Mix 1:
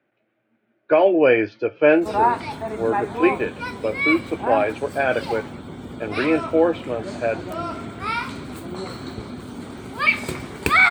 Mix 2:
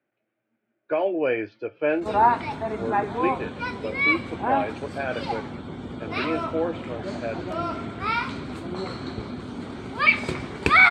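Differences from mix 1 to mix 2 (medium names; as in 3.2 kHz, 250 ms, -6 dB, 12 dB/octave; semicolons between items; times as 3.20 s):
speech -8.5 dB; master: add low-pass 5.5 kHz 12 dB/octave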